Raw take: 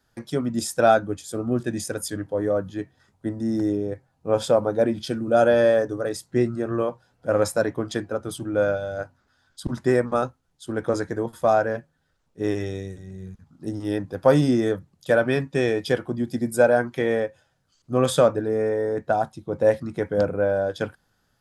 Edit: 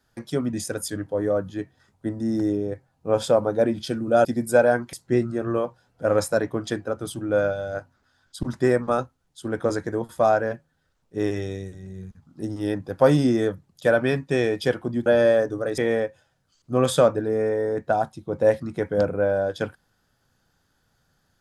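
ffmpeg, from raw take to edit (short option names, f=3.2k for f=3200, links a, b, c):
-filter_complex "[0:a]asplit=6[a][b][c][d][e][f];[a]atrim=end=0.532[g];[b]atrim=start=1.728:end=5.452[h];[c]atrim=start=16.298:end=16.982[i];[d]atrim=start=6.168:end=16.302[j];[e]atrim=start=5.448:end=6.172[k];[f]atrim=start=16.978[l];[g][h]acrossfade=d=0.004:c1=hsin:c2=hsin[m];[m][i]acrossfade=d=0.004:c1=hsin:c2=hsin[n];[n][j]acrossfade=d=0.004:c1=hsin:c2=hsin[o];[o][k]acrossfade=d=0.004:c1=hsin:c2=hsin[p];[p][l]acrossfade=d=0.004:c1=hsin:c2=hsin"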